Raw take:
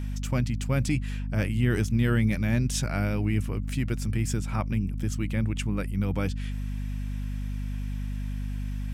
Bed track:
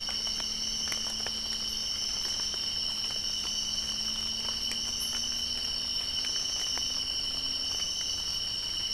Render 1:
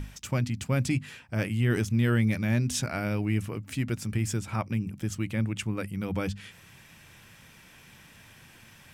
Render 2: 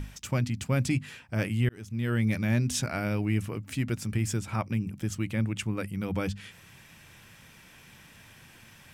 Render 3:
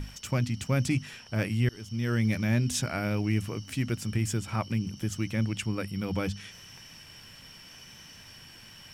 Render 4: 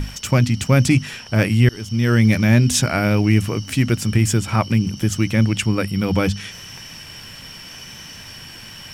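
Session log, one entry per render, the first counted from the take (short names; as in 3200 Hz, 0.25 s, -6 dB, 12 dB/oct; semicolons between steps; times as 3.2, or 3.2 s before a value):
notches 50/100/150/200/250 Hz
1.69–2.35 fade in
add bed track -19.5 dB
gain +12 dB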